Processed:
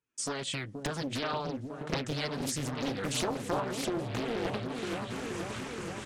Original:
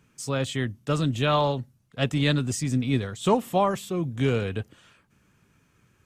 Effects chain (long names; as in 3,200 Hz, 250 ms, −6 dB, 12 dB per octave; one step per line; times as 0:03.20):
source passing by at 0:02.60, 10 m/s, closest 12 metres
camcorder AGC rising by 40 dB per second
noise gate with hold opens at −48 dBFS
low-shelf EQ 200 Hz −11.5 dB
downward compressor 6 to 1, threshold −34 dBFS, peak gain reduction 14.5 dB
flanger 0.74 Hz, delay 2.1 ms, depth 4.4 ms, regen −16%
echo whose low-pass opens from repeat to repeat 476 ms, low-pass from 400 Hz, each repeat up 1 octave, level −3 dB
downsampling to 22,050 Hz
highs frequency-modulated by the lows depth 0.93 ms
level +6.5 dB